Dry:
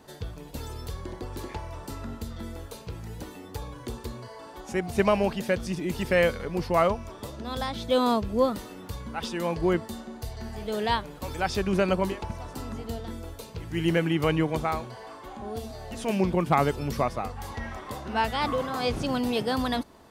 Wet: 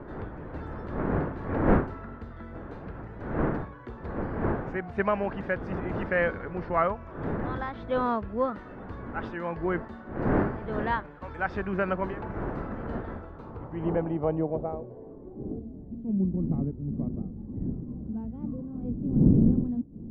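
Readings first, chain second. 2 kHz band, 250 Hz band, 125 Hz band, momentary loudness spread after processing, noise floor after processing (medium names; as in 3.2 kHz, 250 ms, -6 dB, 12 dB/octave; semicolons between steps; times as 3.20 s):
-1.5 dB, +1.0 dB, +2.0 dB, 14 LU, -44 dBFS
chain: wind noise 370 Hz -28 dBFS; low-pass sweep 1.6 kHz -> 230 Hz, 13.09–15.99 s; trim -5.5 dB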